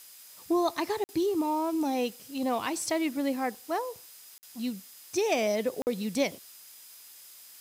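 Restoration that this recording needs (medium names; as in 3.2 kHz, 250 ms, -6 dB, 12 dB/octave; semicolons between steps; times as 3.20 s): band-stop 5 kHz, Q 30; interpolate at 1.04/4.38/5.82 s, 49 ms; noise reduction 25 dB, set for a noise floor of -51 dBFS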